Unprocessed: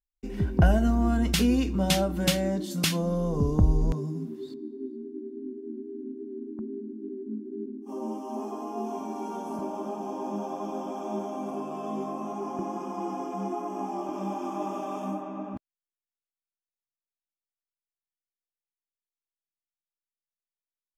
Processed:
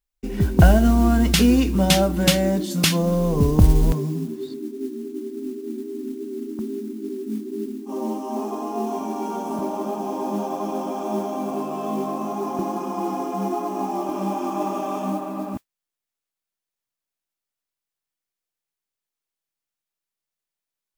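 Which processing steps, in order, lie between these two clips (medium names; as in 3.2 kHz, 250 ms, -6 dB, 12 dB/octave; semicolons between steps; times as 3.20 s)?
modulation noise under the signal 25 dB; trim +7 dB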